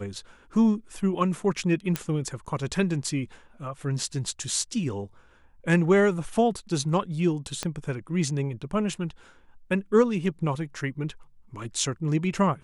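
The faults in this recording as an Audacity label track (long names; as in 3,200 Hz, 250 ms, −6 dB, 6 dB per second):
1.960000	1.960000	click −11 dBFS
7.630000	7.630000	click −14 dBFS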